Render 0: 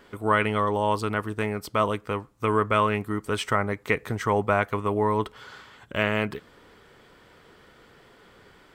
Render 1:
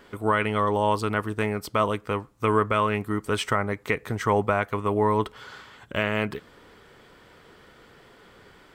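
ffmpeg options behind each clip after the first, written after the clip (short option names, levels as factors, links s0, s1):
-af "alimiter=limit=0.282:level=0:latency=1:release=375,volume=1.19"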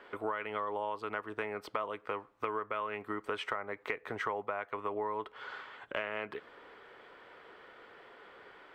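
-filter_complex "[0:a]acrossover=split=350 3300:gain=0.126 1 0.112[s0][s1][s2];[s0][s1][s2]amix=inputs=3:normalize=0,acompressor=threshold=0.0224:ratio=6"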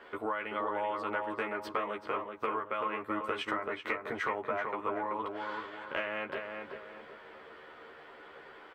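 -filter_complex "[0:a]asplit=2[s0][s1];[s1]adelay=13,volume=0.708[s2];[s0][s2]amix=inputs=2:normalize=0,asplit=2[s3][s4];[s4]adelay=382,lowpass=f=2100:p=1,volume=0.631,asplit=2[s5][s6];[s6]adelay=382,lowpass=f=2100:p=1,volume=0.4,asplit=2[s7][s8];[s8]adelay=382,lowpass=f=2100:p=1,volume=0.4,asplit=2[s9][s10];[s10]adelay=382,lowpass=f=2100:p=1,volume=0.4,asplit=2[s11][s12];[s12]adelay=382,lowpass=f=2100:p=1,volume=0.4[s13];[s3][s5][s7][s9][s11][s13]amix=inputs=6:normalize=0"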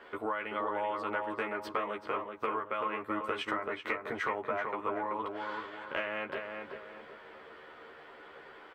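-af anull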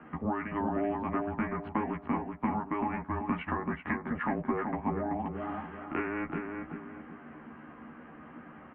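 -af "equalizer=f=490:w=3.6:g=9,highpass=f=280:t=q:w=0.5412,highpass=f=280:t=q:w=1.307,lowpass=f=2700:t=q:w=0.5176,lowpass=f=2700:t=q:w=0.7071,lowpass=f=2700:t=q:w=1.932,afreqshift=-230"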